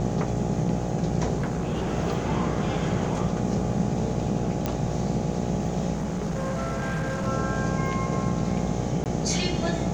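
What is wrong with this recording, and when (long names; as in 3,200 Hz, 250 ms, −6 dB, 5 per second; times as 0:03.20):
mains buzz 60 Hz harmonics 14 −31 dBFS
0:01.37–0:01.92: clipping −23 dBFS
0:04.66: click −12 dBFS
0:05.93–0:07.28: clipping −24.5 dBFS
0:09.04–0:09.06: drop-out 18 ms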